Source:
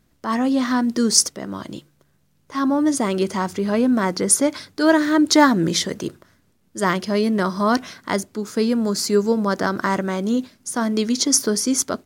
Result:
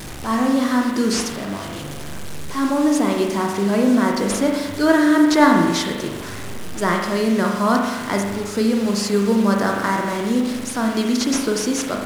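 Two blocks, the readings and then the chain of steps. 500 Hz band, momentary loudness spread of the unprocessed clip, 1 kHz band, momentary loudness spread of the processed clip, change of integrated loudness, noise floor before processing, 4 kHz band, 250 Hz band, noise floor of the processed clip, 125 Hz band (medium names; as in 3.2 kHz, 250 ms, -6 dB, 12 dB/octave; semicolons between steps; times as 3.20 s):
+1.0 dB, 11 LU, +2.0 dB, 14 LU, +0.5 dB, -62 dBFS, -2.0 dB, +2.0 dB, -30 dBFS, +1.5 dB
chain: one-bit delta coder 64 kbps, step -26.5 dBFS; added noise white -52 dBFS; spring tank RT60 1.2 s, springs 40 ms, chirp 65 ms, DRR 1 dB; trim -1 dB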